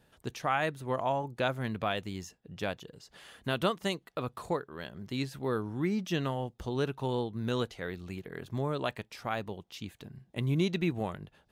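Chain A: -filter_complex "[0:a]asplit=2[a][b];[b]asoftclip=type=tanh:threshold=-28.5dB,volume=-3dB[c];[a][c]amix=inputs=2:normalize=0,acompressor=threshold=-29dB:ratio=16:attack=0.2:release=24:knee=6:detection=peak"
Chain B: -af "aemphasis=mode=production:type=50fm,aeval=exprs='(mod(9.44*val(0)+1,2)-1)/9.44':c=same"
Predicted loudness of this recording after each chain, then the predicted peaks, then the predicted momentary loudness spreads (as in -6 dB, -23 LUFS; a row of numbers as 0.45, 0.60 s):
-37.0, -34.0 LUFS; -26.5, -19.5 dBFS; 7, 12 LU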